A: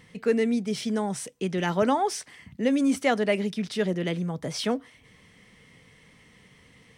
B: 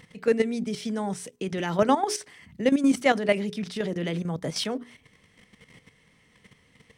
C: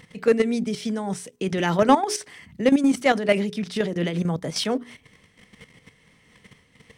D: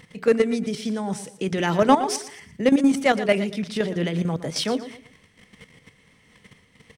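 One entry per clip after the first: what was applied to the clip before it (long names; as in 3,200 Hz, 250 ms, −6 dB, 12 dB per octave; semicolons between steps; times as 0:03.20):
mains-hum notches 60/120/180/240/300/360/420 Hz; output level in coarse steps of 11 dB; level +4.5 dB
in parallel at −6 dB: hard clipping −17.5 dBFS, distortion −12 dB; on the sum: amplitude modulation by smooth noise, depth 65%; level +4 dB
repeating echo 117 ms, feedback 32%, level −14 dB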